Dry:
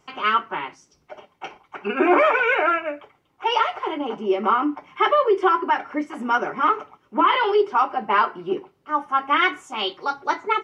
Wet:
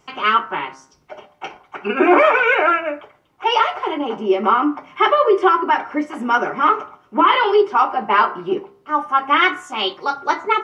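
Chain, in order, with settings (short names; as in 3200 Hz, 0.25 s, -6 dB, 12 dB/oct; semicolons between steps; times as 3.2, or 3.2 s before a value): de-hum 66.42 Hz, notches 31; gain +4.5 dB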